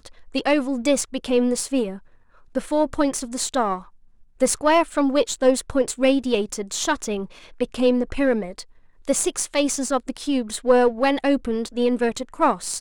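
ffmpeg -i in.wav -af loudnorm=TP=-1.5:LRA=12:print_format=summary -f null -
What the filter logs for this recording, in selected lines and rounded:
Input Integrated:    -22.0 LUFS
Input True Peak:      -5.5 dBTP
Input LRA:             2.2 LU
Input Threshold:     -32.3 LUFS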